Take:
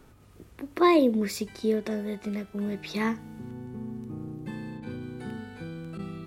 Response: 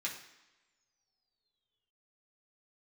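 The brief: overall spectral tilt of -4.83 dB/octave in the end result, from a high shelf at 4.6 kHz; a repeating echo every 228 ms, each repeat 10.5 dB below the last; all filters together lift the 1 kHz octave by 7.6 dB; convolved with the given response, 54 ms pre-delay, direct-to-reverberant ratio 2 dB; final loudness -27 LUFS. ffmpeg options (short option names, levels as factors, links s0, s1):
-filter_complex "[0:a]equalizer=f=1000:t=o:g=8.5,highshelf=f=4600:g=-4.5,aecho=1:1:228|456|684:0.299|0.0896|0.0269,asplit=2[s0][s1];[1:a]atrim=start_sample=2205,adelay=54[s2];[s1][s2]afir=irnorm=-1:irlink=0,volume=0.631[s3];[s0][s3]amix=inputs=2:normalize=0,volume=0.631"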